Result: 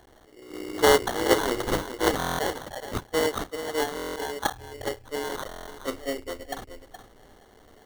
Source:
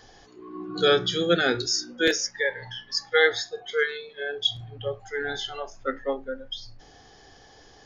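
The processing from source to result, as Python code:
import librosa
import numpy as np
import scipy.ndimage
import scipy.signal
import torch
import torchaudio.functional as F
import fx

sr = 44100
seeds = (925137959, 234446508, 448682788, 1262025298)

p1 = fx.cycle_switch(x, sr, every=3, mode='muted')
p2 = fx.fixed_phaser(p1, sr, hz=390.0, stages=4)
p3 = fx.level_steps(p2, sr, step_db=22)
p4 = p2 + F.gain(torch.from_numpy(p3), -2.0).numpy()
p5 = fx.sample_hold(p4, sr, seeds[0], rate_hz=2500.0, jitter_pct=0)
p6 = p5 + fx.echo_single(p5, sr, ms=420, db=-10.5, dry=0)
y = fx.buffer_glitch(p6, sr, at_s=(2.18, 3.95, 5.47), block=1024, repeats=8)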